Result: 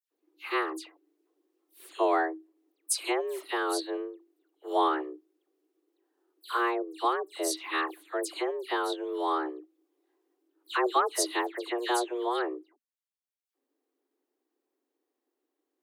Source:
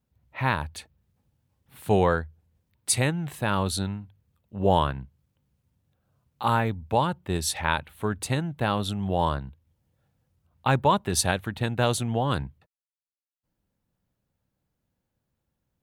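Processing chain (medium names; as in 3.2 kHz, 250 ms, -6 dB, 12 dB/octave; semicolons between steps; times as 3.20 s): frequency shift +240 Hz; phase dispersion lows, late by 110 ms, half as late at 2.7 kHz; trim -4.5 dB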